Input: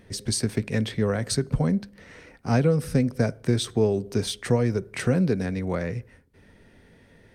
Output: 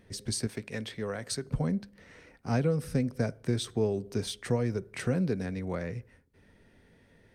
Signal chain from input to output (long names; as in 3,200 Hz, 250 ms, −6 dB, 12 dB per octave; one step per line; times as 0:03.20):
0:00.47–0:01.46: low-shelf EQ 290 Hz −9.5 dB
level −6.5 dB